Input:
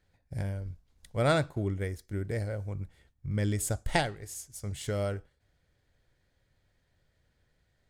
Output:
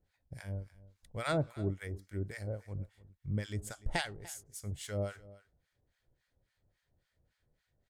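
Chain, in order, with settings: harmonic tremolo 3.6 Hz, depth 100%, crossover 900 Hz; on a send: echo 0.294 s -19.5 dB; on the sum: gain -1.5 dB

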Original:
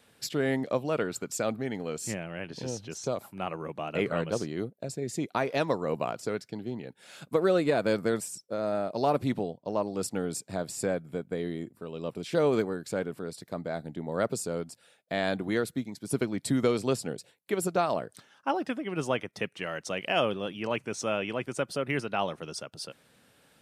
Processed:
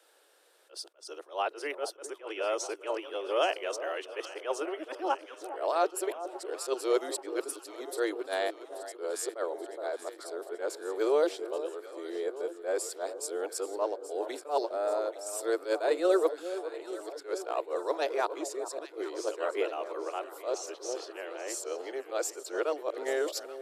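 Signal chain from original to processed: whole clip reversed; steep high-pass 330 Hz 72 dB/oct; bell 2300 Hz -5.5 dB 0.85 oct; echo with dull and thin repeats by turns 0.416 s, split 1100 Hz, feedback 77%, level -11.5 dB; attack slew limiter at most 220 dB/s

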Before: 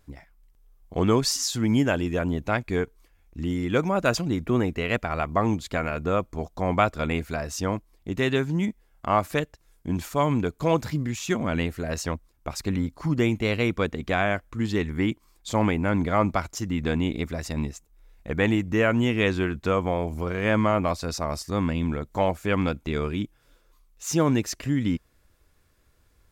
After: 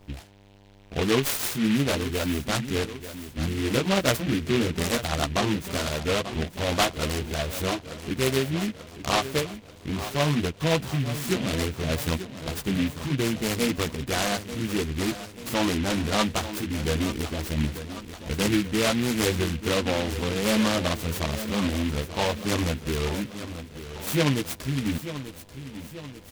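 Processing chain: in parallel at -1 dB: compressor, threshold -34 dBFS, peak gain reduction 17.5 dB; on the sum: chorus voices 2, 0.62 Hz, delay 14 ms, depth 1.5 ms; buzz 100 Hz, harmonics 10, -54 dBFS -4 dB/oct; on a send: feedback echo 0.888 s, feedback 53%, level -12 dB; on the sum: noise-modulated delay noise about 2300 Hz, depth 0.14 ms

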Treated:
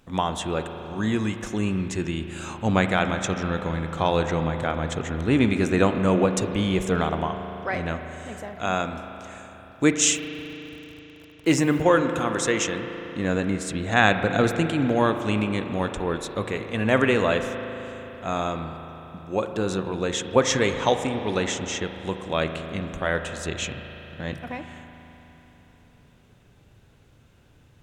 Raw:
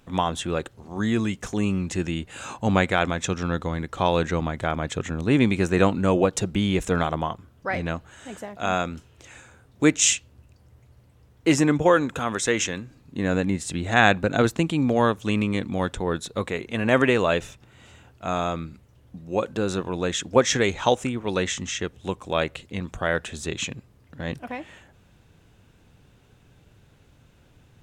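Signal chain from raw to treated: 10.15–11.82 requantised 8-bit, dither none; spring tank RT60 3.9 s, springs 37 ms, chirp 40 ms, DRR 7 dB; gain -1 dB

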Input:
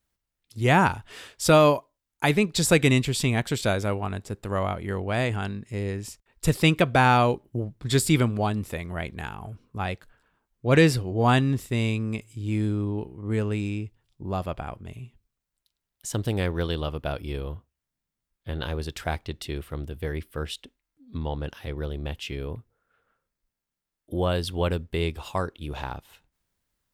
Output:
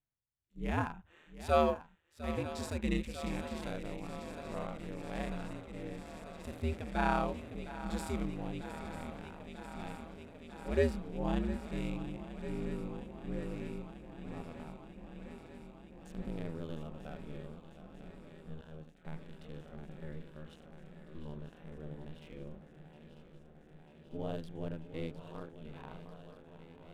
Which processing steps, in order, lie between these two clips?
Wiener smoothing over 9 samples; swung echo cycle 0.944 s, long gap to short 3:1, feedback 77%, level -14 dB; 18.61–19.05 expander -24 dBFS; ring modulator 79 Hz; harmonic-percussive split percussive -17 dB; gain -7 dB

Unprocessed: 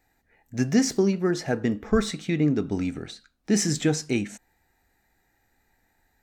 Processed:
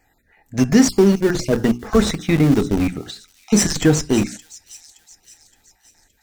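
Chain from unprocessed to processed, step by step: random spectral dropouts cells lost 23%; in parallel at -5 dB: Schmitt trigger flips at -25.5 dBFS; on the sum: notches 60/120/180/240/300/360/420 Hz; thin delay 0.569 s, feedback 48%, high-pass 4500 Hz, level -13 dB; gain +7.5 dB

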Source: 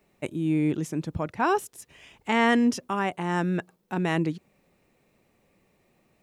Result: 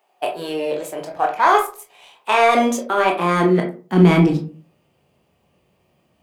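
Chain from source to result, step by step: high-pass sweep 580 Hz -> 70 Hz, 2.33–5.21; sample leveller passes 1; formant shift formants +3 st; reverb RT60 0.35 s, pre-delay 16 ms, DRR 0.5 dB; gain +1.5 dB

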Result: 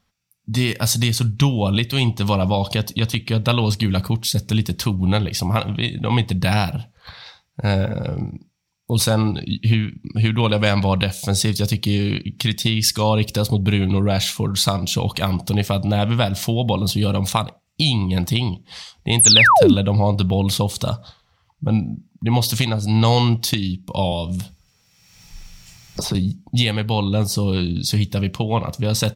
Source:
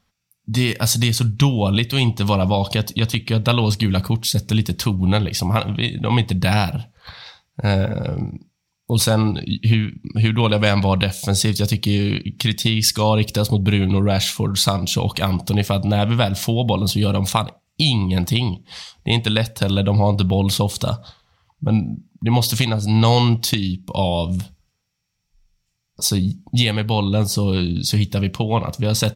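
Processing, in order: 19.19–19.74 painted sound fall 210–12000 Hz -10 dBFS; 24.12–26.15 three-band squash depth 100%; gain -1 dB

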